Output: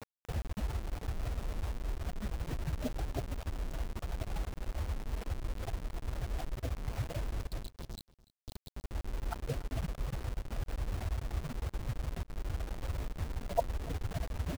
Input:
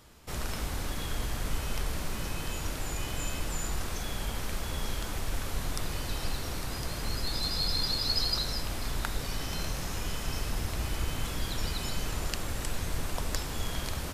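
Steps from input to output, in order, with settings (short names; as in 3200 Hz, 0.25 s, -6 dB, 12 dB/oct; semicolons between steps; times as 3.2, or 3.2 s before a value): spectral contrast raised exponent 3; reverb removal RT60 0.64 s; HPF 200 Hz 6 dB/oct; compressor 10:1, threshold -49 dBFS, peak gain reduction 22.5 dB; synth low-pass 710 Hz, resonance Q 4.1; varispeed -3%; requantised 10-bit, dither none; echo 0.291 s -21.5 dB; gain +17.5 dB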